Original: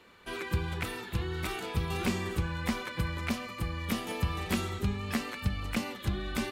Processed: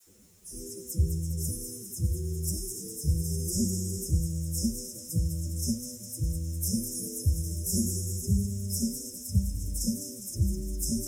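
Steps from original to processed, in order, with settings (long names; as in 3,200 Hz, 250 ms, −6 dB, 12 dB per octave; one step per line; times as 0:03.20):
low-pass filter 12,000 Hz 12 dB per octave
brick-wall band-stop 650–5,000 Hz
drawn EQ curve 180 Hz 0 dB, 840 Hz −17 dB, 2,400 Hz −18 dB, 3,700 Hz −19 dB, 5,300 Hz +6 dB, 8,600 Hz +10 dB
reversed playback
upward compression, threshold −48 dBFS
reversed playback
all-pass dispersion lows, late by 43 ms, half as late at 2,700 Hz
bit reduction 11 bits
phase-vocoder stretch with locked phases 1.7×
on a send: delay with a high-pass on its return 204 ms, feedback 62%, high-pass 4,600 Hz, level −5.5 dB
on the sum: level +4.5 dB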